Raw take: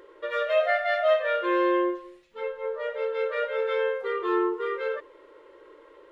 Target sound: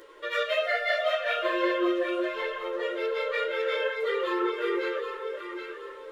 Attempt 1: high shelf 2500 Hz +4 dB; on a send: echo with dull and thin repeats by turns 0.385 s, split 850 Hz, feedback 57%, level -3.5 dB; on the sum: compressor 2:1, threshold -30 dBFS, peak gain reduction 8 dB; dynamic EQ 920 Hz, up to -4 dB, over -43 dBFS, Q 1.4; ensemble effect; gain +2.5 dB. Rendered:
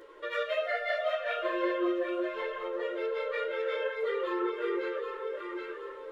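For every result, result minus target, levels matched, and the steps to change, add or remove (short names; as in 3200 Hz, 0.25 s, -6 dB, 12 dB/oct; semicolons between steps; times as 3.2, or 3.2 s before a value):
4000 Hz band -4.0 dB; compressor: peak gain reduction +3 dB
change: high shelf 2500 Hz +13 dB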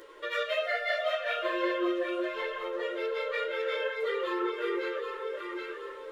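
compressor: peak gain reduction +3.5 dB
change: compressor 2:1, threshold -23 dBFS, peak gain reduction 5 dB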